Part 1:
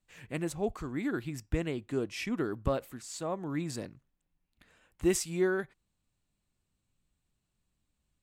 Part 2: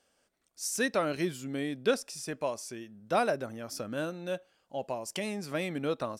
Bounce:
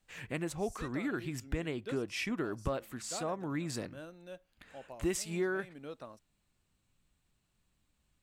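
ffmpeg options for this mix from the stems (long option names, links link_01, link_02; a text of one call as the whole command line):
ffmpeg -i stem1.wav -i stem2.wav -filter_complex "[0:a]equalizer=frequency=1800:width_type=o:width=2.7:gain=3.5,volume=3dB[link_01];[1:a]volume=-13.5dB[link_02];[link_01][link_02]amix=inputs=2:normalize=0,acompressor=threshold=-37dB:ratio=2" out.wav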